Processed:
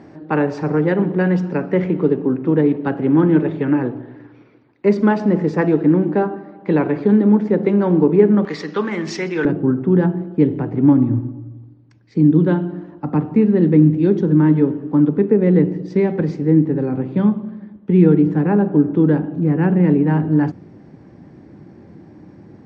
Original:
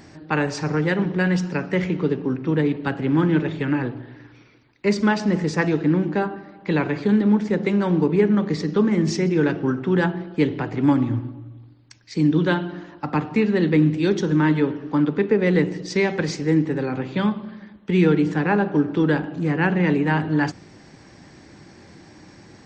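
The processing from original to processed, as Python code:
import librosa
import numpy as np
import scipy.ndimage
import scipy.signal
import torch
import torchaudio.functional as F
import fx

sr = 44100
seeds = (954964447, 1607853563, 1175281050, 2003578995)

y = fx.bandpass_q(x, sr, hz=fx.steps((0.0, 390.0), (8.45, 1500.0), (9.45, 200.0)), q=0.59)
y = y * 10.0 ** (6.5 / 20.0)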